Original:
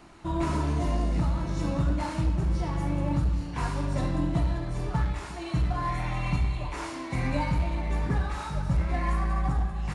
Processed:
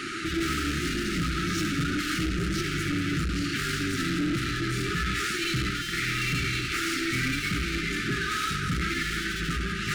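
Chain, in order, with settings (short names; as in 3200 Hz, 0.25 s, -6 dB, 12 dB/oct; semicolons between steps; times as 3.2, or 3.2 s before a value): 7.77–8.68 compressor 1.5:1, threshold -31 dBFS, peak gain reduction 4 dB; flange 1.1 Hz, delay 7.2 ms, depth 5.1 ms, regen -35%; overdrive pedal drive 37 dB, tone 5000 Hz, clips at -19 dBFS; brick-wall FIR band-stop 420–1200 Hz; core saturation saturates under 120 Hz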